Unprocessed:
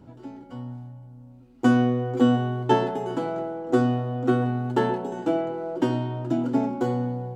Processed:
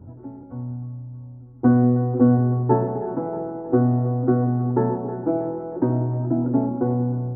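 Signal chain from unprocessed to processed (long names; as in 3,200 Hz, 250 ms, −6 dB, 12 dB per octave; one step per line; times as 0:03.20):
Gaussian smoothing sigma 7 samples
parametric band 87 Hz +14.5 dB 0.65 octaves
echo with a time of its own for lows and highs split 380 Hz, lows 187 ms, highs 316 ms, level −13.5 dB
level +2 dB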